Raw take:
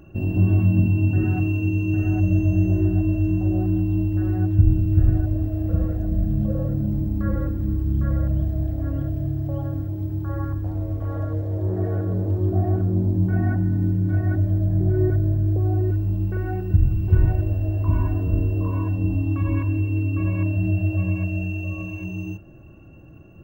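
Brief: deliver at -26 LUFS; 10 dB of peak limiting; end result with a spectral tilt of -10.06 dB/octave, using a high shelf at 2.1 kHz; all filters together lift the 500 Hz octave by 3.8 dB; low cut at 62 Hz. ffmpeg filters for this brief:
-af "highpass=62,equalizer=f=500:t=o:g=6.5,highshelf=f=2100:g=-6.5,volume=0.794,alimiter=limit=0.141:level=0:latency=1"

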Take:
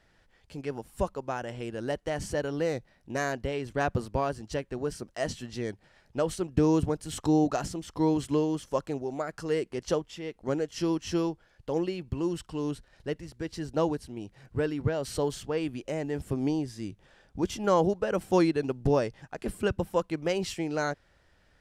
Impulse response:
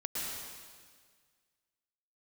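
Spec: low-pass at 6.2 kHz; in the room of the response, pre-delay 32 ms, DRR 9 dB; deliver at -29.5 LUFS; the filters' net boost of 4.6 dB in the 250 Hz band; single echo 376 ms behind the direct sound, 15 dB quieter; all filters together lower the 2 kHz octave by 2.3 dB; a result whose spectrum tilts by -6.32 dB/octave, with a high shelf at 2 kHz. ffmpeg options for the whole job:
-filter_complex "[0:a]lowpass=6200,equalizer=f=250:t=o:g=6.5,highshelf=f=2000:g=8.5,equalizer=f=2000:t=o:g=-8.5,aecho=1:1:376:0.178,asplit=2[s0][s1];[1:a]atrim=start_sample=2205,adelay=32[s2];[s1][s2]afir=irnorm=-1:irlink=0,volume=0.224[s3];[s0][s3]amix=inputs=2:normalize=0,volume=0.75"

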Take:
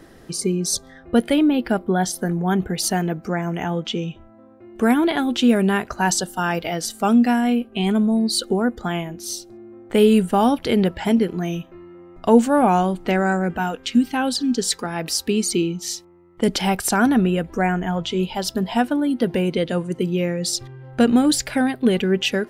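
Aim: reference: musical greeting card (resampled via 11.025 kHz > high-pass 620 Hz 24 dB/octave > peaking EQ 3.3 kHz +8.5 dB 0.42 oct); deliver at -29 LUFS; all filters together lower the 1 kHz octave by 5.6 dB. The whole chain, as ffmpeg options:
-af "equalizer=f=1000:t=o:g=-7.5,aresample=11025,aresample=44100,highpass=f=620:w=0.5412,highpass=f=620:w=1.3066,equalizer=f=3300:t=o:w=0.42:g=8.5,volume=0.891"

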